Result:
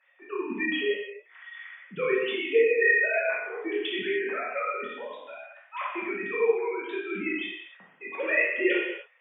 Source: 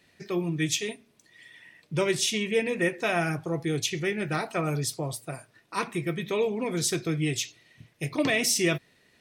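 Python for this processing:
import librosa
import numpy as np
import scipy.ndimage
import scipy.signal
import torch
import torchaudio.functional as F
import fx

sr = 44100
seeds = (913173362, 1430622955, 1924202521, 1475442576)

y = fx.sine_speech(x, sr)
y = fx.highpass(y, sr, hz=830.0, slope=6)
y = fx.rev_gated(y, sr, seeds[0], gate_ms=340, shape='falling', drr_db=-6.5)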